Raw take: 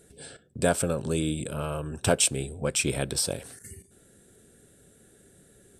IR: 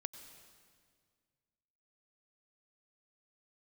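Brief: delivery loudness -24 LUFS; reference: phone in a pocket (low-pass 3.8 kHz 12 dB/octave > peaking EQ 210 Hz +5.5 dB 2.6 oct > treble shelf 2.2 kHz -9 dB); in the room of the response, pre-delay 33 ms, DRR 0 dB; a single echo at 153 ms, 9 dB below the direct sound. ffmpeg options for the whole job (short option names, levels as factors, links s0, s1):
-filter_complex "[0:a]aecho=1:1:153:0.355,asplit=2[s0][s1];[1:a]atrim=start_sample=2205,adelay=33[s2];[s1][s2]afir=irnorm=-1:irlink=0,volume=1.33[s3];[s0][s3]amix=inputs=2:normalize=0,lowpass=3800,equalizer=f=210:t=o:w=2.6:g=5.5,highshelf=f=2200:g=-9,volume=0.944"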